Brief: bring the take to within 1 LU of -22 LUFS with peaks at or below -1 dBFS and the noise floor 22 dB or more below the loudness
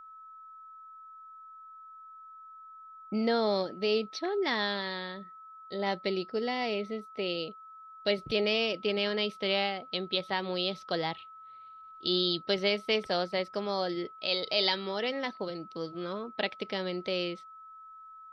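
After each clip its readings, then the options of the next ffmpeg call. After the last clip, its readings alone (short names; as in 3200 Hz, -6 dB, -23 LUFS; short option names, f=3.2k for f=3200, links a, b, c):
steady tone 1300 Hz; tone level -47 dBFS; loudness -31.5 LUFS; peak -13.0 dBFS; loudness target -22.0 LUFS
-> -af "bandreject=f=1.3k:w=30"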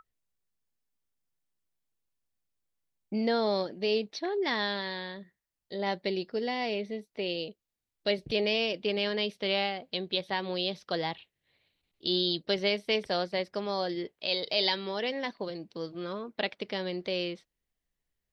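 steady tone none; loudness -31.5 LUFS; peak -13.0 dBFS; loudness target -22.0 LUFS
-> -af "volume=9.5dB"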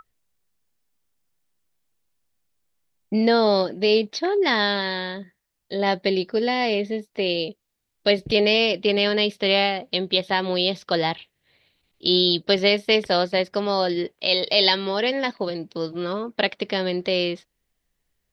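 loudness -22.0 LUFS; peak -3.5 dBFS; noise floor -77 dBFS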